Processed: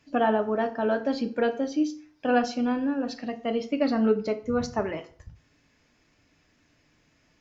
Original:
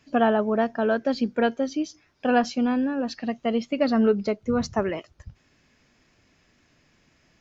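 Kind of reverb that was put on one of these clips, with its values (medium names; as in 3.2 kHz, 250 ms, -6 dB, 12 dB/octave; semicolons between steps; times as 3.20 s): FDN reverb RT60 0.48 s, low-frequency decay 0.95×, high-frequency decay 0.75×, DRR 6.5 dB; trim -3.5 dB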